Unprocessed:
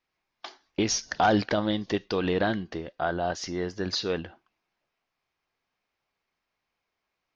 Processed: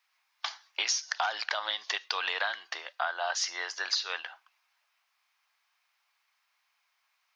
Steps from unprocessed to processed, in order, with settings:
high-pass filter 890 Hz 24 dB per octave
high-shelf EQ 4,400 Hz +3.5 dB
downward compressor 10 to 1, threshold −34 dBFS, peak gain reduction 13 dB
level +7.5 dB

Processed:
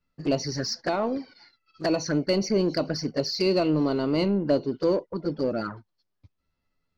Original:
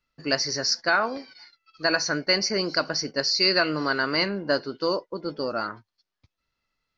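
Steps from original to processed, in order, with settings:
tilt shelving filter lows +6.5 dB, about 730 Hz
flanger swept by the level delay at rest 11.7 ms, full sweep at −21.5 dBFS
in parallel at −6.5 dB: soft clipping −30.5 dBFS, distortion −6 dB

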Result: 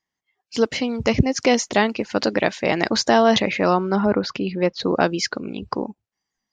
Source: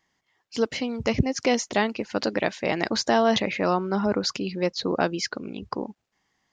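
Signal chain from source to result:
noise reduction from a noise print of the clip's start 17 dB
0:03.96–0:04.80: low-pass filter 3,100 Hz 12 dB per octave
level +5 dB

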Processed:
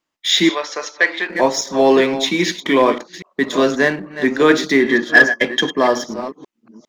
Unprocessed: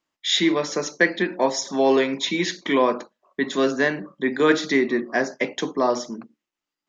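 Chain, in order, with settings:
delay that plays each chunk backwards 403 ms, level −11 dB
in parallel at −3 dB: dead-zone distortion −33 dBFS
0:04.80–0:06.04: on the sum: hollow resonant body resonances 1,700/3,200 Hz, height 18 dB
soft clipping −2.5 dBFS, distortion −20 dB
0:00.49–0:01.30: band-pass filter 710–5,300 Hz
level +2 dB

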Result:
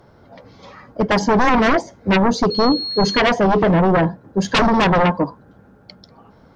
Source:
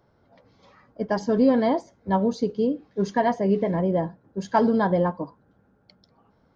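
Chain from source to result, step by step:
sine wavefolder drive 13 dB, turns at −8 dBFS
0:02.50–0:03.18: steady tone 4,300 Hz −20 dBFS
level −3 dB

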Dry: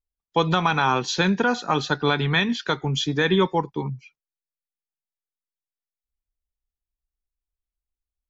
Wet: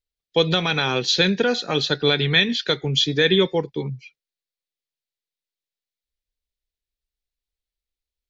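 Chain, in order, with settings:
octave-band graphic EQ 125/500/1,000/2,000/4,000 Hz +3/+9/−11/+6/+11 dB
level −2.5 dB

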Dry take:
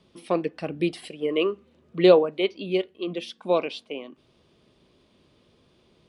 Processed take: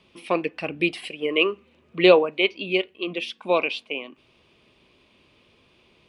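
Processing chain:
graphic EQ with 15 bands 160 Hz −3 dB, 1,000 Hz +4 dB, 2,500 Hz +12 dB

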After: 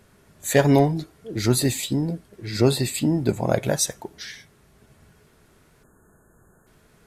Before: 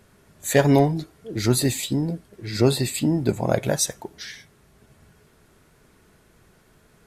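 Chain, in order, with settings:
time-frequency box erased 0:05.83–0:06.67, 1,800–6,400 Hz

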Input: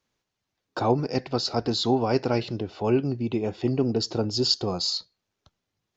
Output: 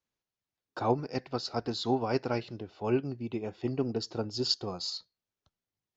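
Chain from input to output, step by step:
dynamic equaliser 1,500 Hz, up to +4 dB, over −43 dBFS, Q 0.84
expander for the loud parts 1.5 to 1, over −31 dBFS
level −5 dB

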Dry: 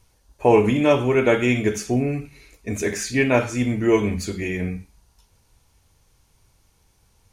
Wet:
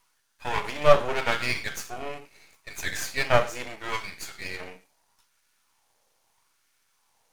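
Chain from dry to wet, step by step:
auto-filter high-pass sine 0.78 Hz 570–1,600 Hz
half-wave rectification
level −1 dB

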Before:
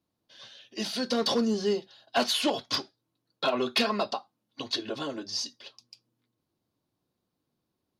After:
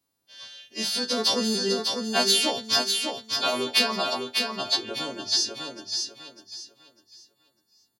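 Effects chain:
every partial snapped to a pitch grid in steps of 2 semitones
repeating echo 600 ms, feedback 28%, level −4.5 dB

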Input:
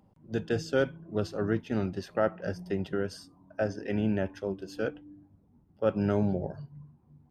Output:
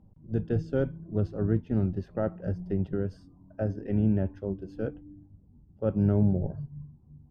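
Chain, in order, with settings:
spectral tilt −4.5 dB per octave
level −7 dB

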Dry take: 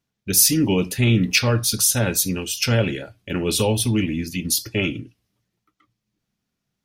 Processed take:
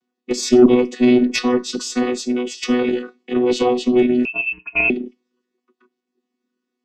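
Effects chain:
channel vocoder with a chord as carrier bare fifth, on B3
harmonic generator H 4 −23 dB, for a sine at −5.5 dBFS
0:04.25–0:04.90: voice inversion scrambler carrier 2,900 Hz
level +5 dB

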